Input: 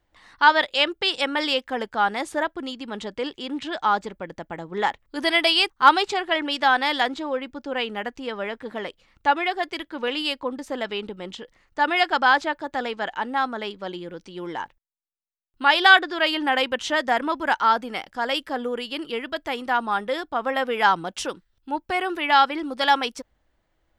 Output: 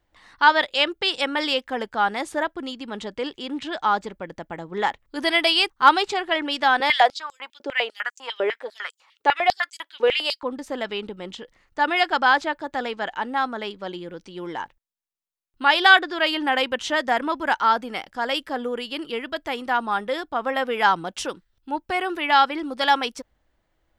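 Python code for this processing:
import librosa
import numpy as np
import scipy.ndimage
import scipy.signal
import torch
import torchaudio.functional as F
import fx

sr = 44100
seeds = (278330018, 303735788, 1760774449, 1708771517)

y = fx.filter_held_highpass(x, sr, hz=10.0, low_hz=410.0, high_hz=7100.0, at=(6.8, 10.43))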